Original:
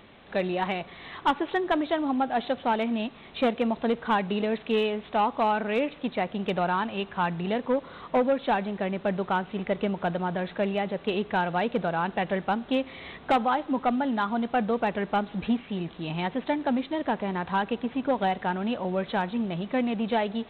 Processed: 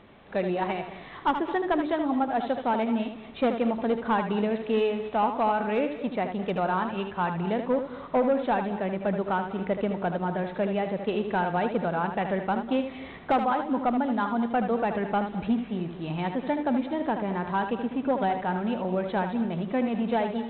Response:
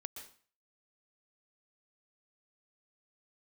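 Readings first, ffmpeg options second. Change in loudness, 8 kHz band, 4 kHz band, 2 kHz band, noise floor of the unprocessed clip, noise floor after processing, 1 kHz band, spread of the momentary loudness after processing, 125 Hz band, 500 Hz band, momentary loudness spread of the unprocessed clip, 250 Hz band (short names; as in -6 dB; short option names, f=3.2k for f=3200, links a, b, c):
0.0 dB, n/a, -5.0 dB, -2.0 dB, -48 dBFS, -42 dBFS, 0.0 dB, 4 LU, +0.5 dB, +0.5 dB, 4 LU, +0.5 dB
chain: -filter_complex "[0:a]lowpass=f=1.8k:p=1,asplit=2[a][b];[1:a]atrim=start_sample=2205,adelay=77[c];[b][c]afir=irnorm=-1:irlink=0,volume=-3.5dB[d];[a][d]amix=inputs=2:normalize=0"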